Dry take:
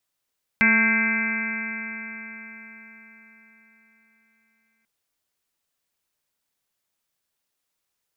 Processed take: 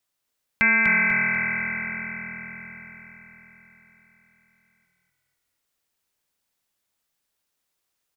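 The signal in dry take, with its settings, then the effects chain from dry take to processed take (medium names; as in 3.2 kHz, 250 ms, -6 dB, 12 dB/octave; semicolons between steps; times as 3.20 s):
stretched partials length 4.24 s, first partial 220 Hz, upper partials -17.5/-17/-14/-12.5/-15/1/-11.5/3/0/-9 dB, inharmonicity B 0.0012, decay 4.59 s, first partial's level -21 dB
dynamic bell 240 Hz, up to -6 dB, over -39 dBFS, Q 1.1; on a send: frequency-shifting echo 246 ms, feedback 42%, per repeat -41 Hz, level -5 dB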